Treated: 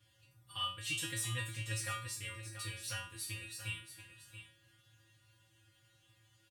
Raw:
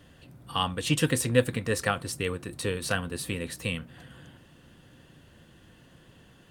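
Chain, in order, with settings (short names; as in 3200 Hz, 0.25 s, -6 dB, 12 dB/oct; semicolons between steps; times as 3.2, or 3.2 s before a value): passive tone stack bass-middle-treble 5-5-5; resonator 110 Hz, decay 0.37 s, harmonics odd, mix 100%; echo 0.681 s -11 dB; gain +13 dB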